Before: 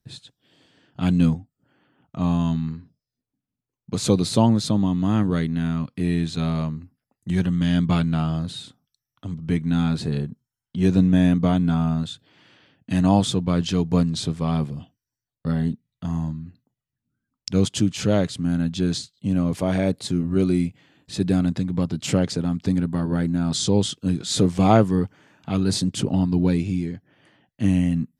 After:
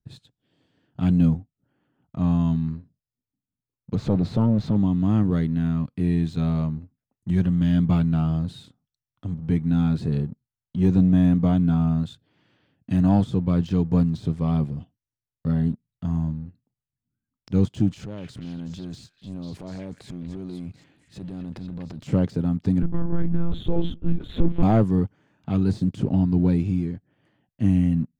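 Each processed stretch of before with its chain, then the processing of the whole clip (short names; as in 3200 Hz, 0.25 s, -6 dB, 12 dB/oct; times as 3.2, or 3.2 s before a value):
3.95–4.76 zero-crossing step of -25.5 dBFS + tape spacing loss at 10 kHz 24 dB + core saturation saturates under 470 Hz
17.91–22.07 compressor 12:1, threshold -29 dBFS + transient shaper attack -10 dB, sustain +7 dB + delay with a stepping band-pass 0.245 s, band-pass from 2100 Hz, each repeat 0.7 oct, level -3 dB
22.82–24.63 air absorption 100 m + notches 50/100/150/200/250/300/350/400 Hz + monotone LPC vocoder at 8 kHz 170 Hz
whole clip: de-esser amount 85%; sample leveller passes 1; tilt -2 dB/oct; gain -8 dB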